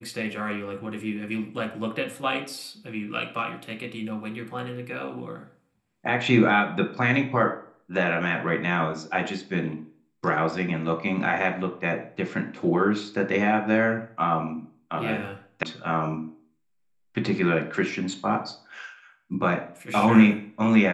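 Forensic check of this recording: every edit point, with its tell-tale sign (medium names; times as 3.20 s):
15.63 s: sound stops dead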